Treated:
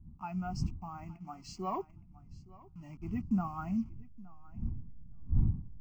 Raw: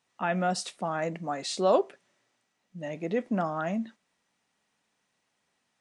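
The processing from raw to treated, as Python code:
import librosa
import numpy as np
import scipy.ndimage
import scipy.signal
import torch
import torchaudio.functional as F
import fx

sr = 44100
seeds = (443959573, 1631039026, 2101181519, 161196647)

p1 = fx.delta_hold(x, sr, step_db=-38.5)
p2 = fx.dmg_wind(p1, sr, seeds[0], corner_hz=170.0, level_db=-38.0)
p3 = 10.0 ** (-19.0 / 20.0) * (np.abs((p2 / 10.0 ** (-19.0 / 20.0) + 3.0) % 4.0 - 2.0) - 1.0)
p4 = p2 + (p3 * 10.0 ** (-9.0 / 20.0))
p5 = fx.peak_eq(p4, sr, hz=630.0, db=-7.0, octaves=0.3)
p6 = fx.fixed_phaser(p5, sr, hz=2500.0, stages=8)
p7 = p6 + fx.echo_feedback(p6, sr, ms=868, feedback_pct=16, wet_db=-15, dry=0)
p8 = fx.rider(p7, sr, range_db=5, speed_s=2.0)
p9 = fx.spectral_expand(p8, sr, expansion=1.5)
y = p9 * 10.0 ** (-2.5 / 20.0)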